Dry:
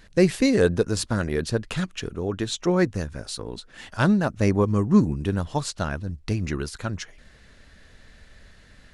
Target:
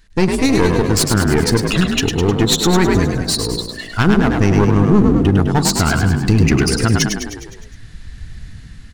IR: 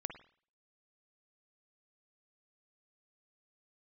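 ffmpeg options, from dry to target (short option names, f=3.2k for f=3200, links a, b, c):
-filter_complex "[0:a]highshelf=f=3.6k:g=6.5,bandreject=f=70.91:t=h:w=4,bandreject=f=141.82:t=h:w=4,bandreject=f=212.73:t=h:w=4,bandreject=f=283.64:t=h:w=4,bandreject=f=354.55:t=h:w=4,bandreject=f=425.46:t=h:w=4,bandreject=f=496.37:t=h:w=4,bandreject=f=567.28:t=h:w=4,bandreject=f=638.19:t=h:w=4,bandreject=f=709.1:t=h:w=4,bandreject=f=780.01:t=h:w=4,bandreject=f=850.92:t=h:w=4,asplit=2[a][b];[b]acompressor=threshold=-29dB:ratio=6,volume=-2.5dB[c];[a][c]amix=inputs=2:normalize=0,afftdn=nr=16:nf=-29,aeval=exprs='clip(val(0),-1,0.0447)':c=same,asplit=2[d][e];[e]asplit=7[f][g][h][i][j][k][l];[f]adelay=103,afreqshift=46,volume=-6dB[m];[g]adelay=206,afreqshift=92,volume=-10.9dB[n];[h]adelay=309,afreqshift=138,volume=-15.8dB[o];[i]adelay=412,afreqshift=184,volume=-20.6dB[p];[j]adelay=515,afreqshift=230,volume=-25.5dB[q];[k]adelay=618,afreqshift=276,volume=-30.4dB[r];[l]adelay=721,afreqshift=322,volume=-35.3dB[s];[m][n][o][p][q][r][s]amix=inputs=7:normalize=0[t];[d][t]amix=inputs=2:normalize=0,dynaudnorm=f=130:g=13:m=9.5dB,equalizer=f=570:w=6.5:g=-14,alimiter=level_in=6.5dB:limit=-1dB:release=50:level=0:latency=1,volume=-1dB"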